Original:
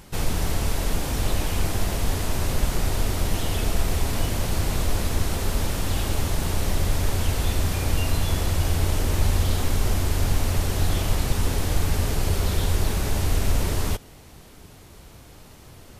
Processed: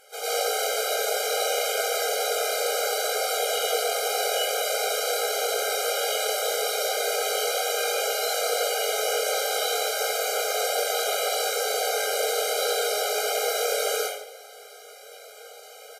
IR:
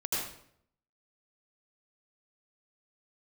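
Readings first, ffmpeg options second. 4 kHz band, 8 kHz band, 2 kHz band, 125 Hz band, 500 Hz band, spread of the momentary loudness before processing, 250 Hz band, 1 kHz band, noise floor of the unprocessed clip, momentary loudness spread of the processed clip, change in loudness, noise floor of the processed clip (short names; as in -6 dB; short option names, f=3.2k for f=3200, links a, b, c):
+6.0 dB, +5.0 dB, +5.0 dB, under -40 dB, +8.0 dB, 2 LU, under -20 dB, +6.0 dB, -47 dBFS, 6 LU, +1.0 dB, -46 dBFS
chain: -filter_complex "[0:a]asplit=2[a][b];[b]adelay=21,volume=-5dB[c];[a][c]amix=inputs=2:normalize=0[d];[1:a]atrim=start_sample=2205,asetrate=36603,aresample=44100[e];[d][e]afir=irnorm=-1:irlink=0,afftfilt=real='re*eq(mod(floor(b*sr/1024/410),2),1)':imag='im*eq(mod(floor(b*sr/1024/410),2),1)':win_size=1024:overlap=0.75"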